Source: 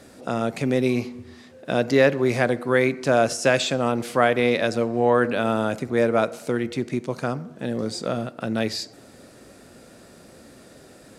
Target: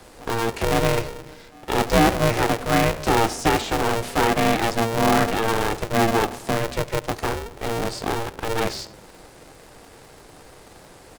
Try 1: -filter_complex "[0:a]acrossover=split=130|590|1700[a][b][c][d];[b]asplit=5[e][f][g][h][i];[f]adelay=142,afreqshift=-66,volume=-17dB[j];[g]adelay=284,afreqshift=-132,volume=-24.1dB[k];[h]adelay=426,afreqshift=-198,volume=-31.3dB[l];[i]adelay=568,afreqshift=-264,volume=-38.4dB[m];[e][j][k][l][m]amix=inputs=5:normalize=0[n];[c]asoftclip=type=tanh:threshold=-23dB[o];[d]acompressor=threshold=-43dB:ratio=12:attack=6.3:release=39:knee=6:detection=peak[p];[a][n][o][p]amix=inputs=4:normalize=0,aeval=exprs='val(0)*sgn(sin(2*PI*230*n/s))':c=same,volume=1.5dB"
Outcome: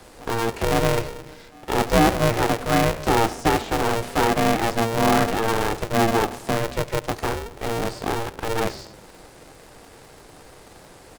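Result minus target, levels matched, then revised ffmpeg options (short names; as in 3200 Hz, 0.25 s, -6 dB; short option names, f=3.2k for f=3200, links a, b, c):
compressor: peak gain reduction +9 dB
-filter_complex "[0:a]acrossover=split=130|590|1700[a][b][c][d];[b]asplit=5[e][f][g][h][i];[f]adelay=142,afreqshift=-66,volume=-17dB[j];[g]adelay=284,afreqshift=-132,volume=-24.1dB[k];[h]adelay=426,afreqshift=-198,volume=-31.3dB[l];[i]adelay=568,afreqshift=-264,volume=-38.4dB[m];[e][j][k][l][m]amix=inputs=5:normalize=0[n];[c]asoftclip=type=tanh:threshold=-23dB[o];[d]acompressor=threshold=-33dB:ratio=12:attack=6.3:release=39:knee=6:detection=peak[p];[a][n][o][p]amix=inputs=4:normalize=0,aeval=exprs='val(0)*sgn(sin(2*PI*230*n/s))':c=same,volume=1.5dB"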